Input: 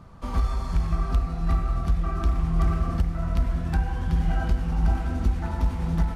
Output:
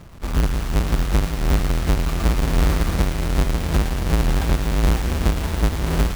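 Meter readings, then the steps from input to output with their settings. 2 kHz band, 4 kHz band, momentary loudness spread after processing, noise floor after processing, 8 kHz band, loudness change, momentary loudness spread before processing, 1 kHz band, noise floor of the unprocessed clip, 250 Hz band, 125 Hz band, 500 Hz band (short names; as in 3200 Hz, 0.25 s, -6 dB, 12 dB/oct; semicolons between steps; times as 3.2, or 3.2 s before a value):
+10.0 dB, +15.0 dB, 2 LU, -26 dBFS, n/a, +5.0 dB, 2 LU, +4.5 dB, -32 dBFS, +6.0 dB, +4.0 dB, +10.5 dB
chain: half-waves squared off; thin delay 0.112 s, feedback 80%, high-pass 1700 Hz, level -7.5 dB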